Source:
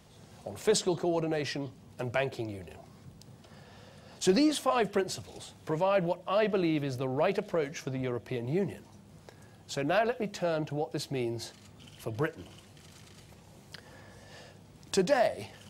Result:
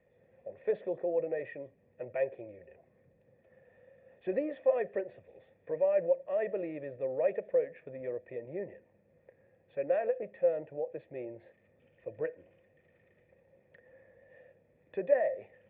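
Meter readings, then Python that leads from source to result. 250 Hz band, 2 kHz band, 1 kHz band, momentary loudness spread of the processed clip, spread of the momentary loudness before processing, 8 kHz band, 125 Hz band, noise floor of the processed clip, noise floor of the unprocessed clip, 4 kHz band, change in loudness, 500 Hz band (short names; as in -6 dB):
-12.5 dB, -9.5 dB, -11.5 dB, 16 LU, 18 LU, under -40 dB, -17.0 dB, -69 dBFS, -56 dBFS, under -30 dB, -3.0 dB, -0.5 dB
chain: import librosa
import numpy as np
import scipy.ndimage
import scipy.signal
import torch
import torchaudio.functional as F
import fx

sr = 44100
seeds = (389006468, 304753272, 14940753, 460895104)

y = fx.dynamic_eq(x, sr, hz=640.0, q=0.76, threshold_db=-38.0, ratio=4.0, max_db=5)
y = fx.formant_cascade(y, sr, vowel='e')
y = F.gain(torch.from_numpy(y), 2.0).numpy()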